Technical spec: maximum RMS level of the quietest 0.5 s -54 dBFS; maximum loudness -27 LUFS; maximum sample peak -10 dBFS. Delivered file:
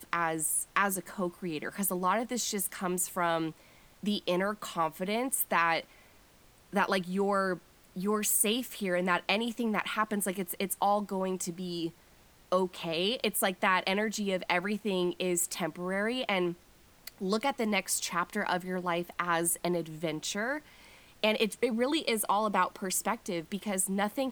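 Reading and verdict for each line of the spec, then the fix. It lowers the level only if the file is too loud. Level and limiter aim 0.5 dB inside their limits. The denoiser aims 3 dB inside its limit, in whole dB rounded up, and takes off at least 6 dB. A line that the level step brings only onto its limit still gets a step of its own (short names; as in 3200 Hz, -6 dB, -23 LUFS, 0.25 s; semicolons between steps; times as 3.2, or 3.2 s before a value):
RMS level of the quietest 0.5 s -60 dBFS: OK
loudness -31.0 LUFS: OK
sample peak -12.0 dBFS: OK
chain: none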